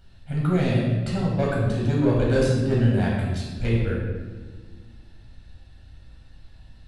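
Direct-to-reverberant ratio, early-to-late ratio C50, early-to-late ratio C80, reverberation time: -4.5 dB, 0.0 dB, 2.5 dB, 1.5 s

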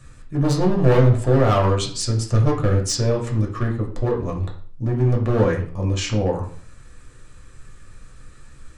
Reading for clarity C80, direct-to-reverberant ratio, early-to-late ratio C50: 12.0 dB, -1.0 dB, 8.0 dB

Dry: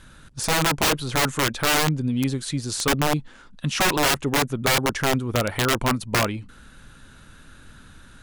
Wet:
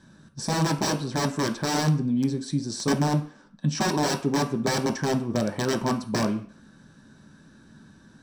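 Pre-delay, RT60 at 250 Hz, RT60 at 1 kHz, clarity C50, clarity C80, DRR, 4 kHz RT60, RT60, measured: 3 ms, 0.40 s, 0.50 s, 13.0 dB, 16.0 dB, 3.0 dB, 0.45 s, 0.50 s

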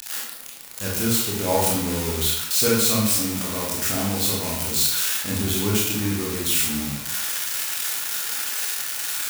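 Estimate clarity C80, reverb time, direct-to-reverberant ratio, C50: 4.5 dB, 0.85 s, -4.5 dB, 1.0 dB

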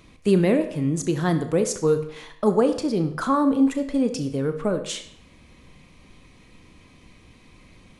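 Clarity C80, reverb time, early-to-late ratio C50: 13.5 dB, 0.65 s, 10.5 dB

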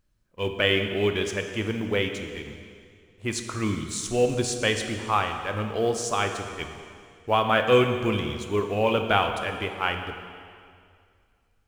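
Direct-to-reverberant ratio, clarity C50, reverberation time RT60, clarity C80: 5.0 dB, 6.5 dB, 2.2 s, 7.5 dB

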